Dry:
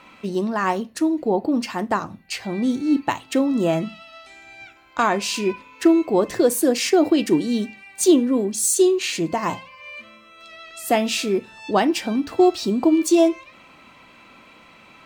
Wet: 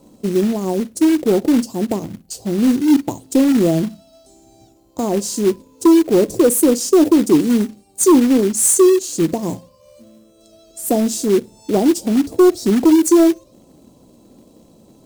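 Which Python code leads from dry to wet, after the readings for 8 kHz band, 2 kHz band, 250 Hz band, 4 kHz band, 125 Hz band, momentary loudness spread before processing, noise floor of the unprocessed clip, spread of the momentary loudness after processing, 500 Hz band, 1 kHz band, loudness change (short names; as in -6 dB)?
+6.0 dB, -4.5 dB, +6.0 dB, -2.0 dB, +7.0 dB, 13 LU, -50 dBFS, 11 LU, +4.5 dB, -2.5 dB, +5.0 dB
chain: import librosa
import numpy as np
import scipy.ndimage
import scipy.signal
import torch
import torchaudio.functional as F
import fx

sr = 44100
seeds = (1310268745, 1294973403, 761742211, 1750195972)

y = scipy.signal.sosfilt(scipy.signal.cheby1(2, 1.0, [430.0, 7700.0], 'bandstop', fs=sr, output='sos'), x)
y = fx.fold_sine(y, sr, drive_db=4, ceiling_db=-6.0)
y = fx.quant_float(y, sr, bits=2)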